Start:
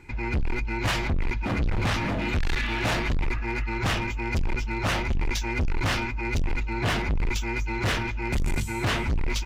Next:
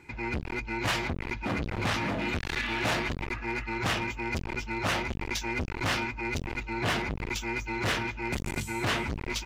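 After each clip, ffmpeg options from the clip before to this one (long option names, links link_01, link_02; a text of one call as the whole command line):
ffmpeg -i in.wav -af "highpass=frequency=150:poles=1,volume=-1.5dB" out.wav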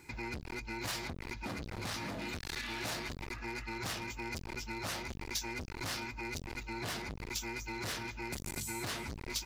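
ffmpeg -i in.wav -af "acompressor=threshold=-34dB:ratio=6,aexciter=amount=1.5:drive=9.5:freq=4000,volume=-3.5dB" out.wav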